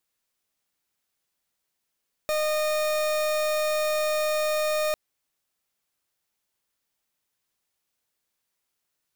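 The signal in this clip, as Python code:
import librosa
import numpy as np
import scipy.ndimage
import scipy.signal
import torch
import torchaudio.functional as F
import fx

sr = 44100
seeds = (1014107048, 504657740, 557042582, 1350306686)

y = fx.pulse(sr, length_s=2.65, hz=613.0, level_db=-25.0, duty_pct=39)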